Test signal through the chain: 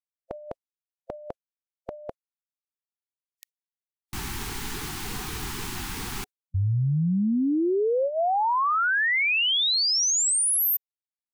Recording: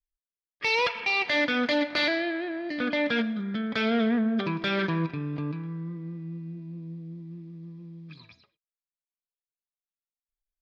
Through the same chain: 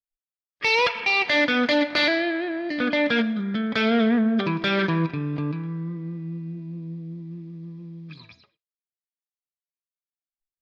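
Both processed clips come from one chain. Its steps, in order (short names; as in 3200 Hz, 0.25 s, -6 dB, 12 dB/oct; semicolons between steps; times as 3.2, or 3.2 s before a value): spectral noise reduction 24 dB; gain +4.5 dB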